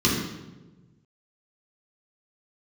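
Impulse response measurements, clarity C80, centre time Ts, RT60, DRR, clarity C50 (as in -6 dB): 4.5 dB, 58 ms, 1.2 s, -6.5 dB, 2.0 dB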